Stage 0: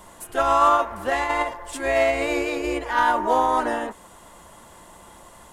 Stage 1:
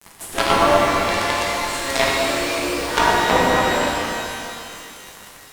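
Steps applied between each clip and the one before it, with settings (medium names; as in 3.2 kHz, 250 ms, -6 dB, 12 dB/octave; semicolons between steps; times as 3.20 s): companded quantiser 2-bit; low-pass that closes with the level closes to 680 Hz, closed at -8.5 dBFS; pitch-shifted reverb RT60 2.6 s, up +12 st, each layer -8 dB, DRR -4.5 dB; trim -4 dB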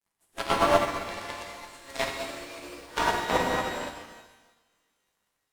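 upward expansion 2.5:1, over -34 dBFS; trim -4 dB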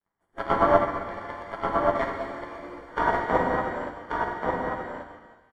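Savitzky-Golay filter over 41 samples; on a send: delay 1134 ms -4 dB; on the sum: trim +2.5 dB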